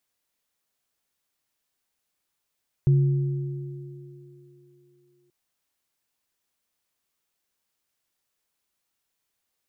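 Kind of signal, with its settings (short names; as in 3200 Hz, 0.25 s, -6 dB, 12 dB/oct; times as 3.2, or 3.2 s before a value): sine partials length 2.43 s, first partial 139 Hz, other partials 356 Hz, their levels -16 dB, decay 2.54 s, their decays 4.33 s, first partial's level -14 dB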